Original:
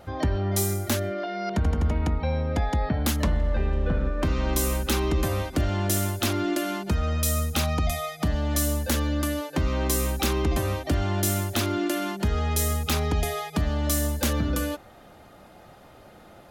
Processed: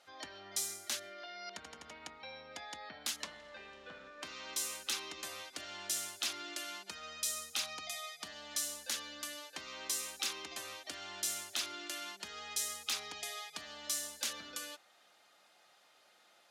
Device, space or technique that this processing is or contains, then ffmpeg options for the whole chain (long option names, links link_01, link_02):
piezo pickup straight into a mixer: -af "highpass=frequency=180:poles=1,lowpass=5600,aderivative,volume=1dB"